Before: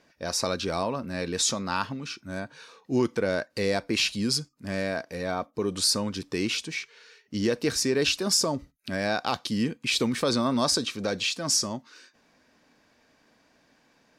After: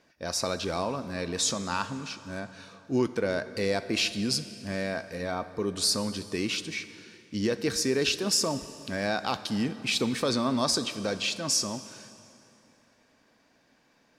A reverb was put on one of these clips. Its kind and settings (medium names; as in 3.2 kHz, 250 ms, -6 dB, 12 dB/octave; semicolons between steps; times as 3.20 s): plate-style reverb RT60 3 s, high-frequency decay 0.75×, DRR 12 dB; trim -2 dB